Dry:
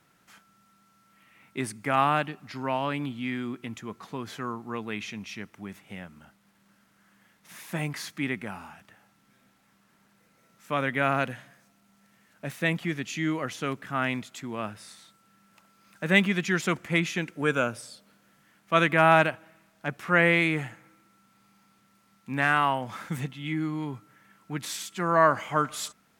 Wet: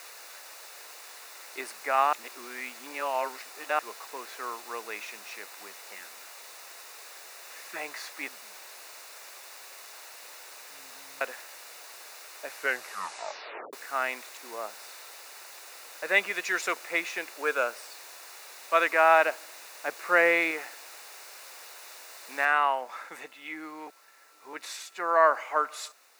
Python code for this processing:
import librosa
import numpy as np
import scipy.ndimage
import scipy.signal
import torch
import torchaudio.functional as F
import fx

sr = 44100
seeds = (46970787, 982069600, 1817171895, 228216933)

y = fx.brickwall_bandstop(x, sr, low_hz=420.0, high_hz=1100.0, at=(5.94, 7.75), fade=0.02)
y = fx.cheby2_lowpass(y, sr, hz=1100.0, order=4, stop_db=80, at=(8.28, 11.21))
y = fx.lowpass(y, sr, hz=1200.0, slope=12, at=(14.37, 14.78))
y = fx.high_shelf(y, sr, hz=4500.0, db=8.0, at=(16.34, 16.75))
y = fx.low_shelf(y, sr, hz=460.0, db=7.0, at=(19.26, 20.51))
y = fx.noise_floor_step(y, sr, seeds[0], at_s=22.45, before_db=-41, after_db=-55, tilt_db=0.0)
y = fx.edit(y, sr, fx.reverse_span(start_s=2.13, length_s=1.66),
    fx.tape_stop(start_s=12.45, length_s=1.28),
    fx.reverse_span(start_s=23.87, length_s=0.66), tone=tone)
y = scipy.signal.sosfilt(scipy.signal.butter(4, 450.0, 'highpass', fs=sr, output='sos'), y)
y = fx.high_shelf(y, sr, hz=6500.0, db=-10.0)
y = fx.notch(y, sr, hz=3200.0, q=5.6)